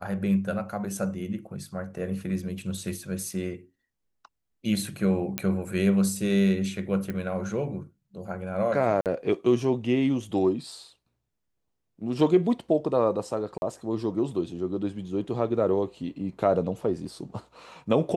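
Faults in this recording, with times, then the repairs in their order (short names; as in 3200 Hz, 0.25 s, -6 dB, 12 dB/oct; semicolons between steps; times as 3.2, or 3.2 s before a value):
5.38 pop -10 dBFS
7.1 pop -20 dBFS
9.01–9.06 gap 48 ms
13.58–13.62 gap 41 ms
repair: de-click; interpolate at 9.01, 48 ms; interpolate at 13.58, 41 ms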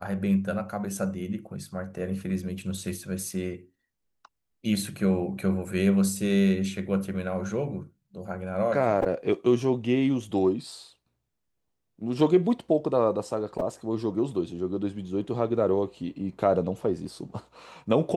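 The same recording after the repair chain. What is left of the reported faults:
7.1 pop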